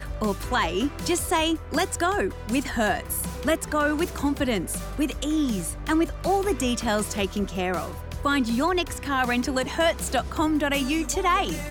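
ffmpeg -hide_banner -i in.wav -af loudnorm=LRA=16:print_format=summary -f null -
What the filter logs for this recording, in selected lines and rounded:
Input Integrated:    -25.1 LUFS
Input True Peak:     -12.7 dBTP
Input LRA:             1.1 LU
Input Threshold:     -35.1 LUFS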